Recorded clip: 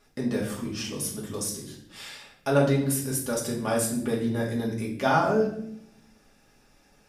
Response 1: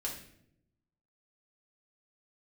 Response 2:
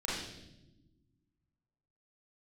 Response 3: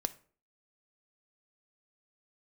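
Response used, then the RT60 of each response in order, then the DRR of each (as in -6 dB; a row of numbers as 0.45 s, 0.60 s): 1; no single decay rate, no single decay rate, 0.45 s; -3.5 dB, -7.0 dB, 10.0 dB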